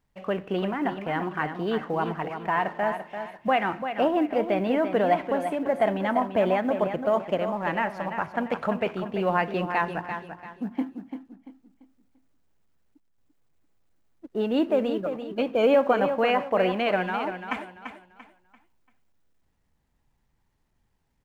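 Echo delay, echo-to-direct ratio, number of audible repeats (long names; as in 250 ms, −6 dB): 341 ms, −8.0 dB, 3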